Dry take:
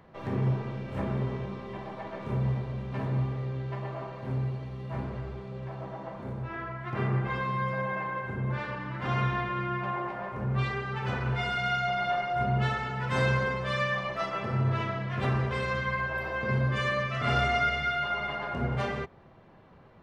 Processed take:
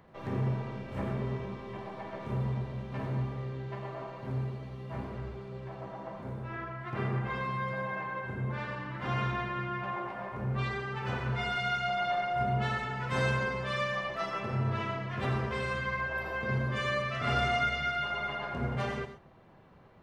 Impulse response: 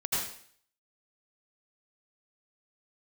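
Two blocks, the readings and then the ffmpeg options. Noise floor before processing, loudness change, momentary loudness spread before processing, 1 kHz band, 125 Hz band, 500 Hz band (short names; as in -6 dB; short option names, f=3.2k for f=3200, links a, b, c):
-54 dBFS, -3.0 dB, 10 LU, -2.5 dB, -4.0 dB, -2.5 dB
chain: -filter_complex "[0:a]asplit=2[a][b];[1:a]atrim=start_sample=2205,atrim=end_sample=6174,highshelf=f=5.1k:g=11.5[c];[b][c]afir=irnorm=-1:irlink=0,volume=-15.5dB[d];[a][d]amix=inputs=2:normalize=0,volume=-4dB"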